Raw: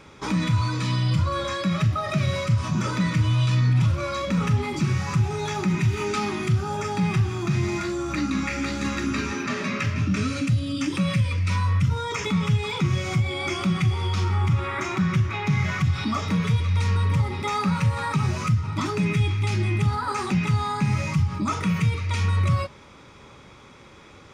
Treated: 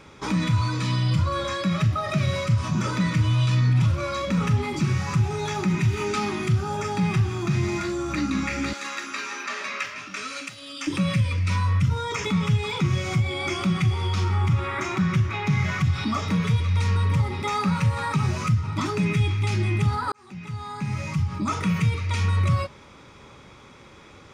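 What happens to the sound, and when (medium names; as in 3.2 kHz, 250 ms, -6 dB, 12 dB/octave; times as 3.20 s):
8.73–10.87 s: high-pass 710 Hz
20.12–21.58 s: fade in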